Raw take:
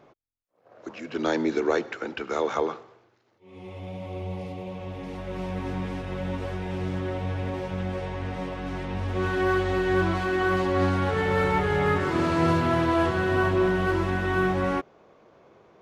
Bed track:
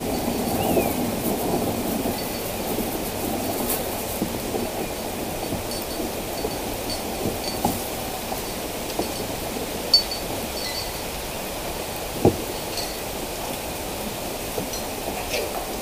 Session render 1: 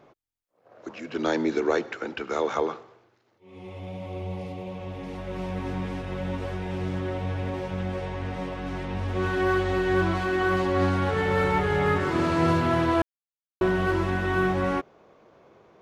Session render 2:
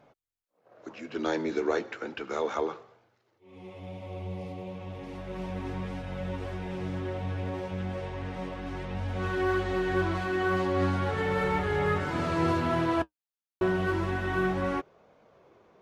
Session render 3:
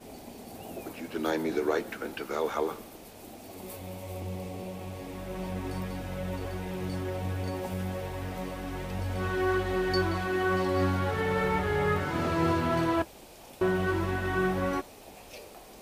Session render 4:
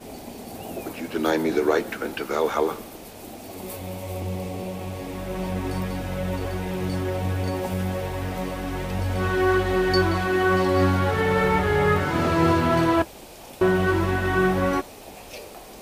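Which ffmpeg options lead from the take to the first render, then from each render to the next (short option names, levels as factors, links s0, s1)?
-filter_complex "[0:a]asplit=3[s0][s1][s2];[s0]atrim=end=13.02,asetpts=PTS-STARTPTS,afade=t=out:st=13.016:d=0.004:c=hsin[s3];[s1]atrim=start=13.02:end=13.61,asetpts=PTS-STARTPTS,volume=0[s4];[s2]atrim=start=13.61,asetpts=PTS-STARTPTS,afade=t=in:d=0.004:c=hsin[s5];[s3][s4][s5]concat=n=3:v=0:a=1"
-af "flanger=delay=1.3:depth=9.4:regen=-55:speed=0.33:shape=sinusoidal"
-filter_complex "[1:a]volume=0.0944[s0];[0:a][s0]amix=inputs=2:normalize=0"
-af "volume=2.24"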